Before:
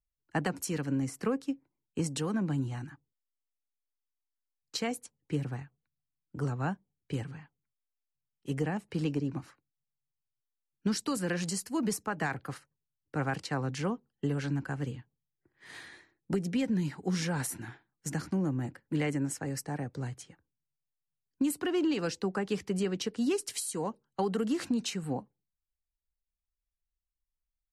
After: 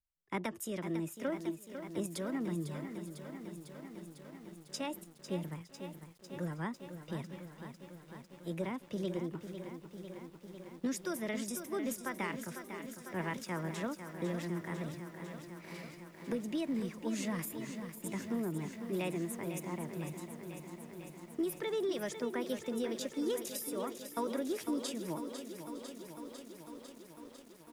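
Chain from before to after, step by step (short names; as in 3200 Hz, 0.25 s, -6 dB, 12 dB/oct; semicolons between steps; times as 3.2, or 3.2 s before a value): pitch shift +3.5 st; feedback echo 0.91 s, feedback 47%, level -22.5 dB; lo-fi delay 0.5 s, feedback 80%, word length 9-bit, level -9 dB; gain -6 dB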